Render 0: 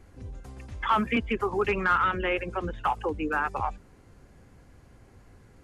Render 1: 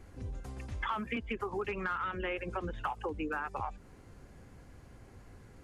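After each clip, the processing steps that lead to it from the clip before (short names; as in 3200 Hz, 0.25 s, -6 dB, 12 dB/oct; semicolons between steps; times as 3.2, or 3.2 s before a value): compressor 6:1, threshold -33 dBFS, peak gain reduction 13 dB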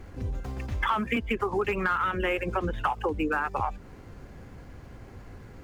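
median filter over 5 samples; gain +8.5 dB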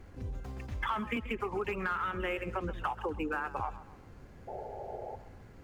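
painted sound noise, 4.47–5.16, 360–890 Hz -35 dBFS; warbling echo 0.133 s, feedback 42%, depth 71 cents, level -15.5 dB; gain -7 dB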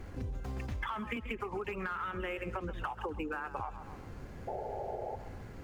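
compressor, threshold -41 dBFS, peak gain reduction 11.5 dB; gain +6 dB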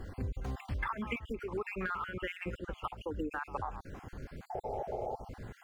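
random spectral dropouts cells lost 41%; gain +2 dB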